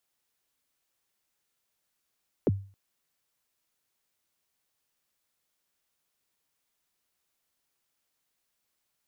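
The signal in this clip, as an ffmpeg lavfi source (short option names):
-f lavfi -i "aevalsrc='0.133*pow(10,-3*t/0.39)*sin(2*PI*(540*0.03/log(98/540)*(exp(log(98/540)*min(t,0.03)/0.03)-1)+98*max(t-0.03,0)))':d=0.27:s=44100"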